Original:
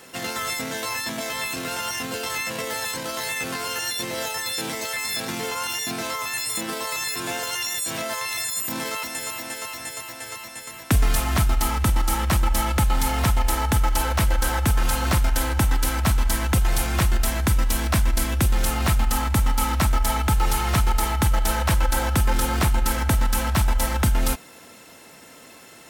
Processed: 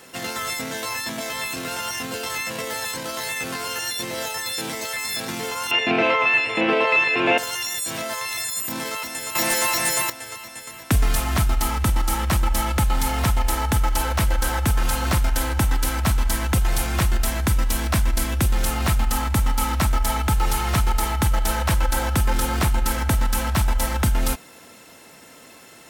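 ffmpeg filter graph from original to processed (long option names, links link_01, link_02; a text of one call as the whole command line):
ffmpeg -i in.wav -filter_complex "[0:a]asettb=1/sr,asplit=3[link_01][link_02][link_03];[link_01]atrim=end=5.714[link_04];[link_02]atrim=start=5.71:end=7.38,asetpts=PTS-STARTPTS,afade=type=in:duration=0.004:curve=qsin,afade=type=out:start_time=1.666:duration=0.004:curve=qsin,lowpass=frequency=2600:width_type=q:width=4.9,equalizer=frequency=480:width=0.57:gain=14[link_05];[link_03]atrim=start=7.376[link_06];[link_04][link_05]acrossfade=duration=0.004:curve1=hsin:curve2=qsin[link_07];[link_07][link_06]acrossfade=duration=0.004:curve1=qsin:curve2=hsin,asettb=1/sr,asplit=3[link_08][link_09][link_10];[link_08]atrim=end=9.354[link_11];[link_09]atrim=start=9.35:end=10.1,asetpts=PTS-STARTPTS,afade=type=in:duration=0.004:curve=qsin,afade=type=out:start_time=0.746:duration=0.004:curve=qsin,aecho=1:1:5.6:0.64,atrim=end_sample=33075,aeval=exprs='0.15*sin(PI/2*2.82*val(0)/0.15)':channel_layout=same[link_12];[link_10]atrim=start=10.096[link_13];[link_11][link_12]acrossfade=duration=0.004:curve1=hsin:curve2=qsin[link_14];[link_14][link_13]acrossfade=duration=0.004:curve1=qsin:curve2=hsin" out.wav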